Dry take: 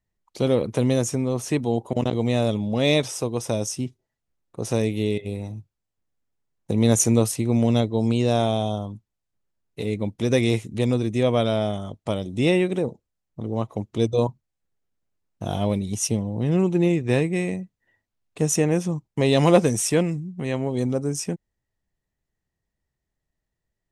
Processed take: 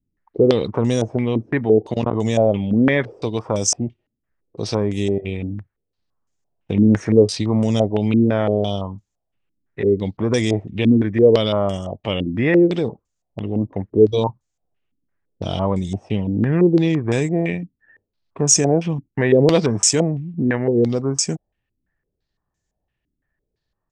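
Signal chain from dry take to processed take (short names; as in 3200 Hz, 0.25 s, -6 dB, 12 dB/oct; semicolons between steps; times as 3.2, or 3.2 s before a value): pitch shift -1 st; in parallel at +2.5 dB: limiter -15 dBFS, peak gain reduction 11 dB; on the sum: wow and flutter 15 cents; stepped low-pass 5.9 Hz 280–6900 Hz; gain -4 dB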